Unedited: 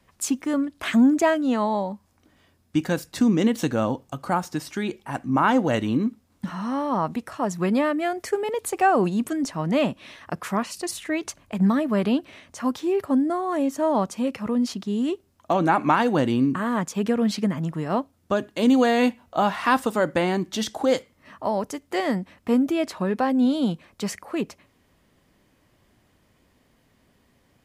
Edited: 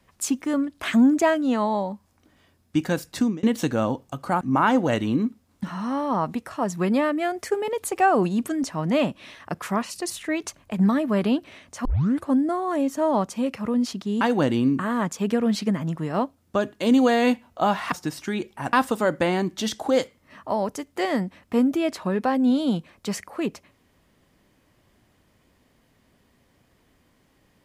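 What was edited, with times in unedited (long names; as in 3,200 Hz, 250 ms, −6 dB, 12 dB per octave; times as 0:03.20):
0:03.18–0:03.43: fade out
0:04.41–0:05.22: move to 0:19.68
0:12.66: tape start 0.42 s
0:15.02–0:15.97: remove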